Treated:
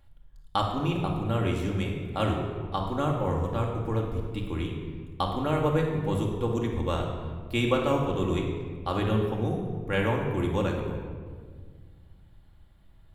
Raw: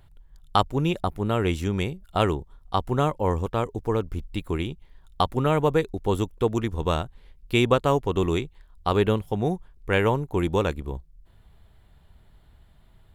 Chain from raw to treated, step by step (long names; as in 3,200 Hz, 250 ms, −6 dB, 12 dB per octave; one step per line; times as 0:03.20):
rectangular room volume 2,100 cubic metres, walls mixed, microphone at 2.3 metres
level −7.5 dB